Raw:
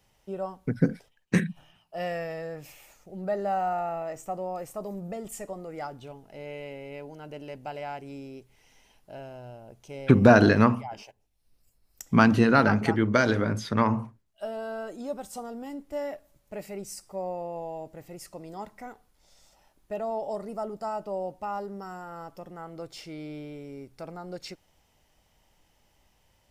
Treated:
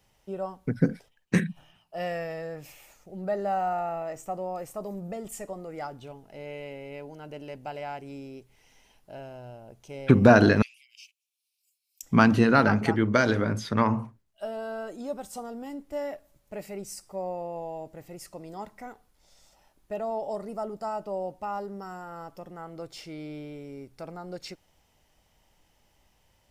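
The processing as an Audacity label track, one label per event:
10.620000	12.030000	Chebyshev high-pass 2.3 kHz, order 6

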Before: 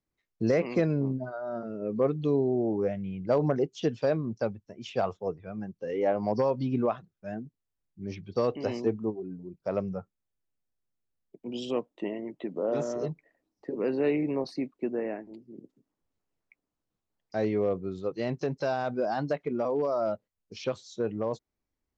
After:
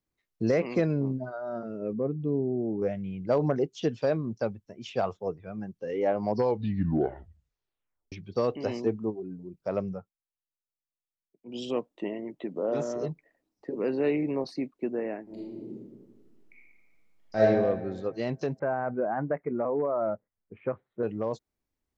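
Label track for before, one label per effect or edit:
1.930000	2.820000	band-pass filter 180 Hz, Q 0.64
6.330000	6.330000	tape stop 1.79 s
9.910000	11.600000	dip -16.5 dB, fades 0.18 s
15.240000	17.420000	reverb throw, RT60 1.5 s, DRR -8 dB
18.590000	21.030000	steep low-pass 2.1 kHz 48 dB/octave

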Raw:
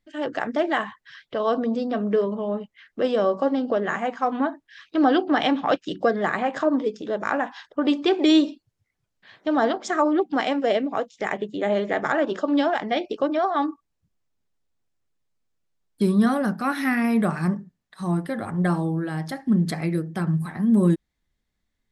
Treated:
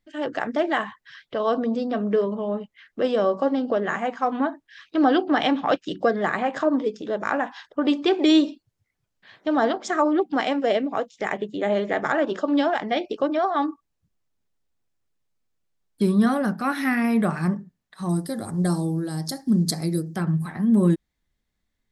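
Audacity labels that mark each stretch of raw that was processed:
18.090000	20.160000	FFT filter 360 Hz 0 dB, 2.7 kHz -11 dB, 4.6 kHz +12 dB

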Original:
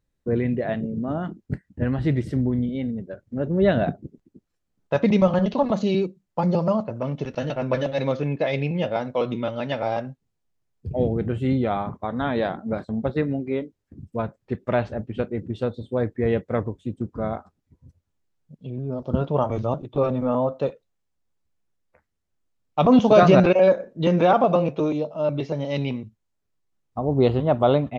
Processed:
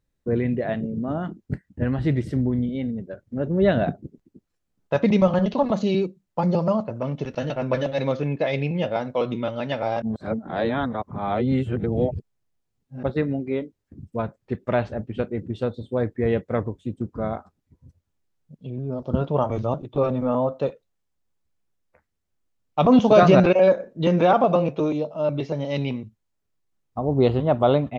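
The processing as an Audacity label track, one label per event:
10.020000	13.030000	reverse

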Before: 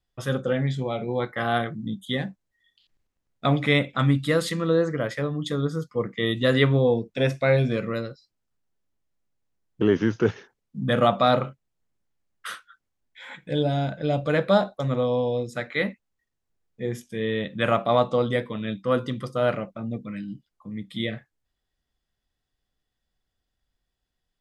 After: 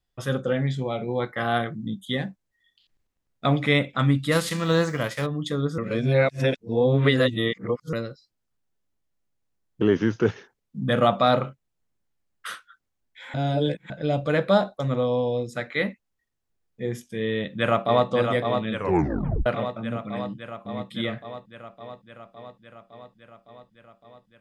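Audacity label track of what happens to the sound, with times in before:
4.310000	5.250000	formants flattened exponent 0.6
5.780000	7.930000	reverse
13.340000	13.900000	reverse
17.320000	18.090000	echo throw 560 ms, feedback 75%, level -5.5 dB
18.730000	18.730000	tape stop 0.73 s

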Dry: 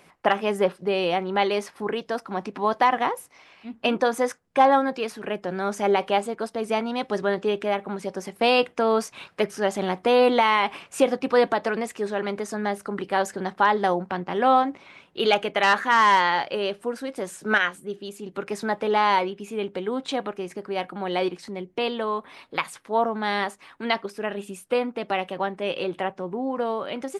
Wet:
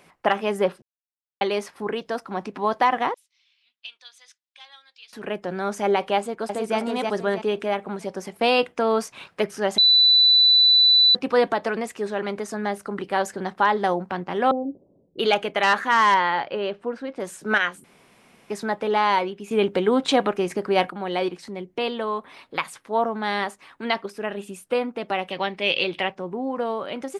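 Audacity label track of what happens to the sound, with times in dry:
0.820000	1.410000	mute
3.140000	5.130000	ladder band-pass 4.2 kHz, resonance 45%
6.170000	6.770000	echo throw 320 ms, feedback 35%, level -3 dB
9.780000	11.150000	bleep 3.98 kHz -12 dBFS
14.510000	15.190000	steep low-pass 560 Hz
16.140000	17.200000	Bessel low-pass 2.8 kHz
17.840000	18.500000	room tone
19.510000	20.900000	gain +8 dB
25.300000	26.150000	high-order bell 3.3 kHz +11.5 dB

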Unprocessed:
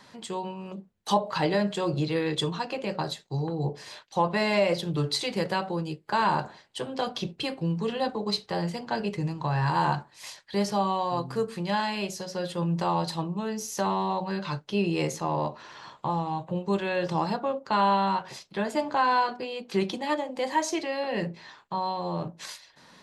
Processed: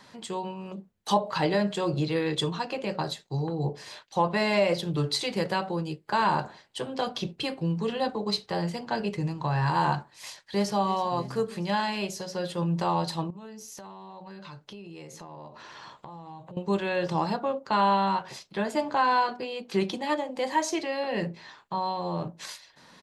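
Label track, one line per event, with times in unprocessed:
10.140000	10.760000	echo throw 320 ms, feedback 65%, level -16 dB
13.300000	16.570000	compression 12:1, threshold -40 dBFS

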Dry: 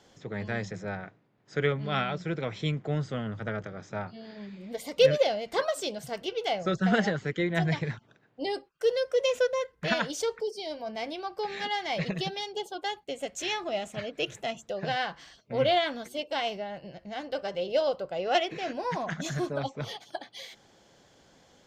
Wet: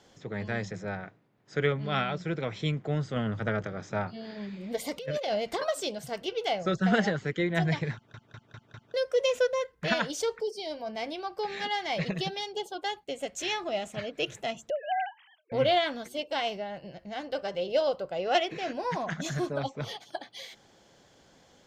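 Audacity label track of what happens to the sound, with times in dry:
3.160000	5.640000	compressor with a negative ratio -30 dBFS
7.940000	7.940000	stutter in place 0.20 s, 5 plays
14.700000	15.520000	formants replaced by sine waves

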